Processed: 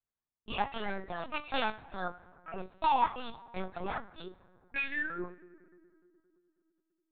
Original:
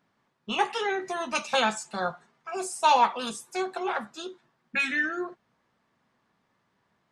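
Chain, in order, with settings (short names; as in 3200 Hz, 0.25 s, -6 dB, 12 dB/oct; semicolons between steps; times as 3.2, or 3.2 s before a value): gate with hold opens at -54 dBFS; on a send at -17.5 dB: reverb RT60 2.8 s, pre-delay 4 ms; on the sum: LPC vocoder at 8 kHz pitch kept; gain -7 dB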